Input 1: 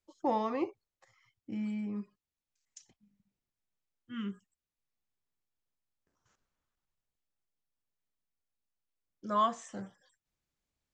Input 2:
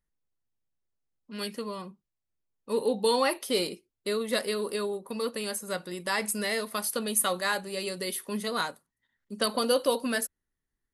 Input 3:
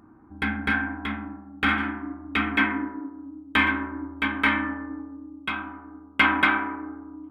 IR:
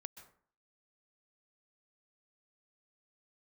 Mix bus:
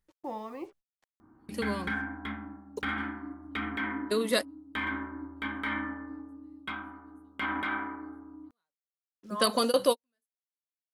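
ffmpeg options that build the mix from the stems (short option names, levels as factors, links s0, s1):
-filter_complex "[0:a]acrusher=bits=8:mix=0:aa=0.5,volume=0.422,asplit=2[s0][s1];[1:a]volume=1.19[s2];[2:a]bandreject=f=2600:w=7.1,alimiter=limit=0.158:level=0:latency=1:release=30,adelay=1200,volume=0.447[s3];[s1]apad=whole_len=482376[s4];[s2][s4]sidechaingate=range=0.00126:threshold=0.00141:ratio=16:detection=peak[s5];[s0][s5][s3]amix=inputs=3:normalize=0"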